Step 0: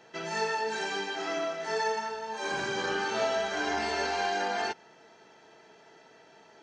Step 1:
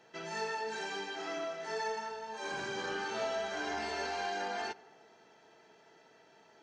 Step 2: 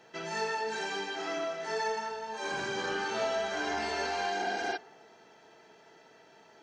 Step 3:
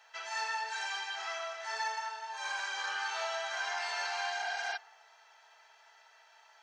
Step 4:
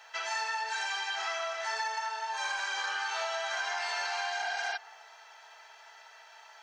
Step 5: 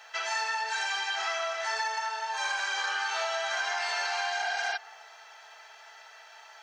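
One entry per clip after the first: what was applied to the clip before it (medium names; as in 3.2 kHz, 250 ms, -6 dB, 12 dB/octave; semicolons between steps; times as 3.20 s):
in parallel at -10.5 dB: saturation -31 dBFS, distortion -11 dB; on the sum: tape echo 87 ms, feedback 86%, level -20.5 dB, low-pass 1.7 kHz; trim -8 dB
spectral replace 4.42–4.74 s, 240–5700 Hz before; trim +4 dB
inverse Chebyshev high-pass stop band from 180 Hz, stop band 70 dB
compression, threshold -38 dBFS, peak gain reduction 7.5 dB; trim +7.5 dB
band-stop 950 Hz, Q 14; trim +3 dB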